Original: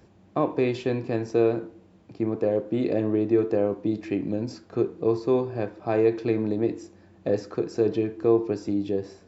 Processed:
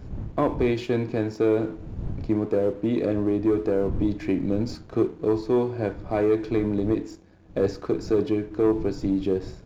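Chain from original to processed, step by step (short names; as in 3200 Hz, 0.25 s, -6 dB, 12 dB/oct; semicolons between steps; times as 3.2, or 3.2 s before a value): wind noise 120 Hz -40 dBFS; sample leveller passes 1; in parallel at 0 dB: vocal rider within 10 dB 0.5 s; on the sum: speed mistake 25 fps video run at 24 fps; gain -8 dB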